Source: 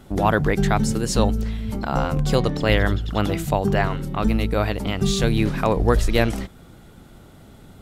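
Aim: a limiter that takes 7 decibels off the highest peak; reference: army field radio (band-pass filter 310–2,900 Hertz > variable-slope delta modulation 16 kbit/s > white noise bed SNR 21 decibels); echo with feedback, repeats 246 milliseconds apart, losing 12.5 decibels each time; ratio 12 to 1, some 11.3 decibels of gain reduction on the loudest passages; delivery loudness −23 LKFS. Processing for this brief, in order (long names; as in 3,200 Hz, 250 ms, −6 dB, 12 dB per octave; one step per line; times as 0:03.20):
downward compressor 12 to 1, threshold −24 dBFS
brickwall limiter −20.5 dBFS
band-pass filter 310–2,900 Hz
repeating echo 246 ms, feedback 24%, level −12.5 dB
variable-slope delta modulation 16 kbit/s
white noise bed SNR 21 dB
level +14 dB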